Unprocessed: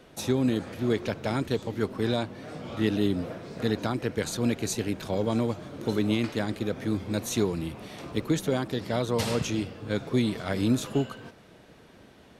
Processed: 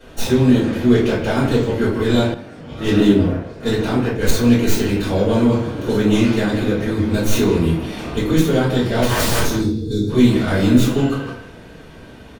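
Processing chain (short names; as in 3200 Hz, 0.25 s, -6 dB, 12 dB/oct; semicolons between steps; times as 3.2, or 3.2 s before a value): tracing distortion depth 0.1 ms; 9.07–10.09 spectral gain 480–3400 Hz -24 dB; 9.02–9.45 wrapped overs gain 24.5 dB; in parallel at -1 dB: limiter -22 dBFS, peak gain reduction 8.5 dB; on the sum: speakerphone echo 0.16 s, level -8 dB; shoebox room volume 44 m³, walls mixed, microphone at 3.2 m; 2.34–4.31 three-band expander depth 100%; gain -8 dB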